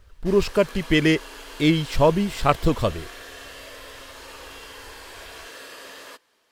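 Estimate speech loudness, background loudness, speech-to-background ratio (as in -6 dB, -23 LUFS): -21.5 LUFS, -40.0 LUFS, 18.5 dB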